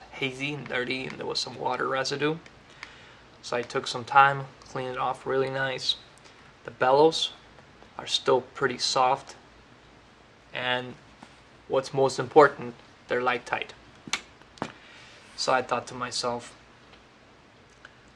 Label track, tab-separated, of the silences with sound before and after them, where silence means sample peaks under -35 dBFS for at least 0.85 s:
9.310000	10.540000	silence
16.470000	17.850000	silence